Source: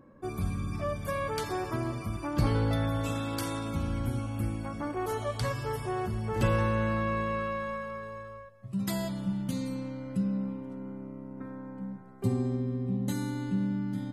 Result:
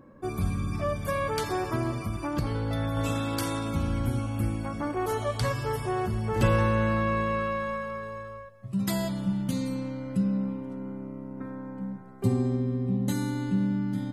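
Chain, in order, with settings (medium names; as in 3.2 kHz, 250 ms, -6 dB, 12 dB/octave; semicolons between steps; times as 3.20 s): 2.03–2.97 s: compression 6:1, threshold -29 dBFS, peak gain reduction 8 dB; trim +3.5 dB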